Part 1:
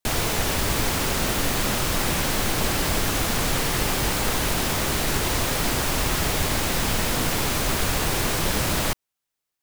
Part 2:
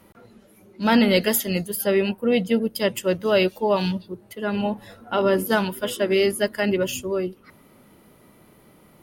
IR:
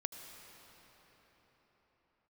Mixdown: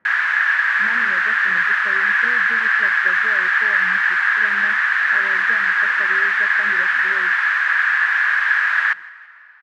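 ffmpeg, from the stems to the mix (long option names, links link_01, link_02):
-filter_complex "[0:a]highpass=frequency=1200:width=0.5412,highpass=frequency=1200:width=1.3066,volume=2.5dB,asplit=3[link_01][link_02][link_03];[link_02]volume=-15dB[link_04];[link_03]volume=-22dB[link_05];[1:a]highpass=130,acompressor=threshold=-24dB:ratio=6,volume=-13dB,asplit=2[link_06][link_07];[link_07]volume=-19.5dB[link_08];[2:a]atrim=start_sample=2205[link_09];[link_04][link_08]amix=inputs=2:normalize=0[link_10];[link_10][link_09]afir=irnorm=-1:irlink=0[link_11];[link_05]aecho=0:1:165|330|495|660|825|990|1155:1|0.47|0.221|0.104|0.0488|0.0229|0.0108[link_12];[link_01][link_06][link_11][link_12]amix=inputs=4:normalize=0,lowpass=frequency=1700:width_type=q:width=9.7"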